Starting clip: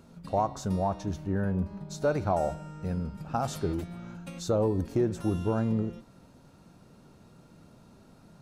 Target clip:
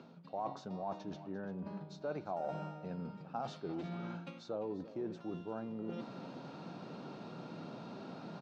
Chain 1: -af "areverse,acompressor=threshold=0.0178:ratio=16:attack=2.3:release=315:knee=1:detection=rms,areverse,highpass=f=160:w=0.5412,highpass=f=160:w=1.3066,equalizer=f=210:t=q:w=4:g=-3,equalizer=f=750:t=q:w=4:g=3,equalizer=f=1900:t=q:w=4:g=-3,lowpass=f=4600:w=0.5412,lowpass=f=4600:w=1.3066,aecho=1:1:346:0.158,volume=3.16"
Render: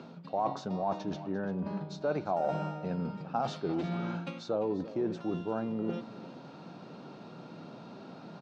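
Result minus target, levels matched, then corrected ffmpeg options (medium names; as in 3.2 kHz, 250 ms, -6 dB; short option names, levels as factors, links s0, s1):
compression: peak gain reduction -8.5 dB
-af "areverse,acompressor=threshold=0.00631:ratio=16:attack=2.3:release=315:knee=1:detection=rms,areverse,highpass=f=160:w=0.5412,highpass=f=160:w=1.3066,equalizer=f=210:t=q:w=4:g=-3,equalizer=f=750:t=q:w=4:g=3,equalizer=f=1900:t=q:w=4:g=-3,lowpass=f=4600:w=0.5412,lowpass=f=4600:w=1.3066,aecho=1:1:346:0.158,volume=3.16"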